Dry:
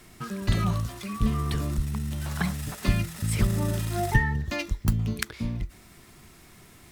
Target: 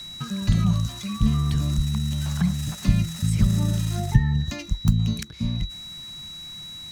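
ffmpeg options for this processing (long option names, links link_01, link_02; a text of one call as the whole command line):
ffmpeg -i in.wav -filter_complex "[0:a]equalizer=frequency=160:width_type=o:width=0.67:gain=6,equalizer=frequency=400:width_type=o:width=0.67:gain=-10,equalizer=frequency=6300:width_type=o:width=0.67:gain=9,aeval=exprs='val(0)+0.0126*sin(2*PI*3900*n/s)':channel_layout=same,acrossover=split=410[link_01][link_02];[link_02]acompressor=threshold=-38dB:ratio=6[link_03];[link_01][link_03]amix=inputs=2:normalize=0,volume=3dB" out.wav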